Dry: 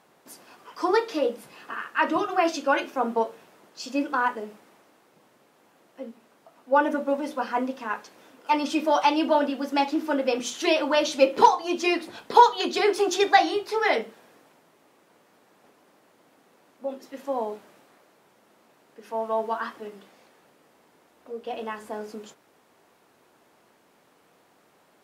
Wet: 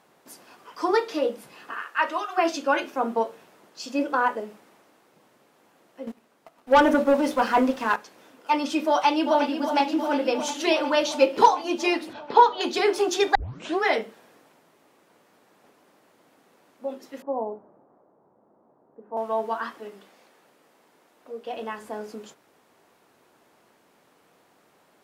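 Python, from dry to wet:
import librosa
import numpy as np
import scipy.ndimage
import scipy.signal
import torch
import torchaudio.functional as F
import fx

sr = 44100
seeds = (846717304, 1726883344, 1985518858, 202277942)

y = fx.highpass(x, sr, hz=fx.line((1.71, 310.0), (2.36, 910.0)), slope=12, at=(1.71, 2.36), fade=0.02)
y = fx.peak_eq(y, sr, hz=570.0, db=7.0, octaves=0.77, at=(3.99, 4.41))
y = fx.leveller(y, sr, passes=2, at=(6.07, 7.96))
y = fx.echo_throw(y, sr, start_s=8.9, length_s=0.69, ms=360, feedback_pct=80, wet_db=-8.5)
y = fx.air_absorb(y, sr, metres=170.0, at=(12.13, 12.61))
y = fx.lowpass(y, sr, hz=1000.0, slope=24, at=(17.22, 19.17))
y = fx.highpass(y, sr, hz=200.0, slope=6, at=(19.74, 21.57))
y = fx.edit(y, sr, fx.tape_start(start_s=13.35, length_s=0.49), tone=tone)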